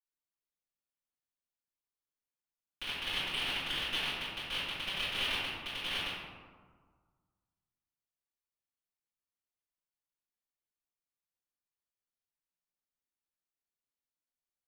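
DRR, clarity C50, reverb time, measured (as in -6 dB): -17.0 dB, -2.5 dB, 1.6 s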